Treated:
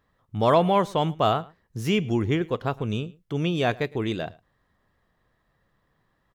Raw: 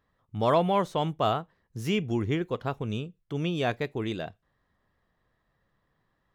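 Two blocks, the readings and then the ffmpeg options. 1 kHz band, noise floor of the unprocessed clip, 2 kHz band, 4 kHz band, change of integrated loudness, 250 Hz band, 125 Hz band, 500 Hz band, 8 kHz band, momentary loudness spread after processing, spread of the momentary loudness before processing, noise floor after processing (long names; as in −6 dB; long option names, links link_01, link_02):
+4.0 dB, −75 dBFS, +4.0 dB, +4.0 dB, +4.0 dB, +4.0 dB, +4.0 dB, +4.0 dB, +4.0 dB, 12 LU, 12 LU, −71 dBFS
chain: -af "aecho=1:1:109:0.0708,volume=4dB"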